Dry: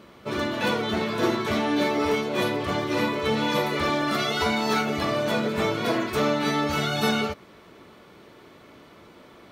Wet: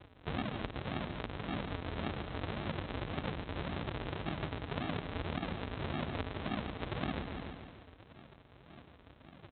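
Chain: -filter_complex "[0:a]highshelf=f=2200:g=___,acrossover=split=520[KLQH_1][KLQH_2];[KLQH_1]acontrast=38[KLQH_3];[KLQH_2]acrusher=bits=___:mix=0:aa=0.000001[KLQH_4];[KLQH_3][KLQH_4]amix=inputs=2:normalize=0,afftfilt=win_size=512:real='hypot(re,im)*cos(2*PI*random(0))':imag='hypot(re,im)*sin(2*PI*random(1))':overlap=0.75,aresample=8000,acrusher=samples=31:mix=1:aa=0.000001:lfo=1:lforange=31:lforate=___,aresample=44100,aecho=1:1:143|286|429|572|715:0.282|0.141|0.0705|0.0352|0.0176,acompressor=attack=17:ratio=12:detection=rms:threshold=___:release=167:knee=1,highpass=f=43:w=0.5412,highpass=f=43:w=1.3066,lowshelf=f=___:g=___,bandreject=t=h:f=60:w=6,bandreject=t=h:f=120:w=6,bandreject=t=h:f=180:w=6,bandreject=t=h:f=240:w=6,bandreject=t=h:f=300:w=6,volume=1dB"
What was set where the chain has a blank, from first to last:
12, 7, 1.8, -30dB, 140, -10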